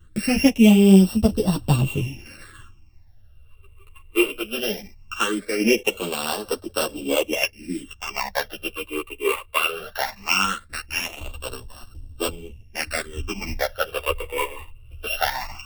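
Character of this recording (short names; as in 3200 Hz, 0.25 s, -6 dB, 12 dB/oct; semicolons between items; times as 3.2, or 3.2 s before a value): a buzz of ramps at a fixed pitch in blocks of 16 samples; phasing stages 8, 0.19 Hz, lowest notch 210–2200 Hz; tremolo triangle 0.61 Hz, depth 35%; a shimmering, thickened sound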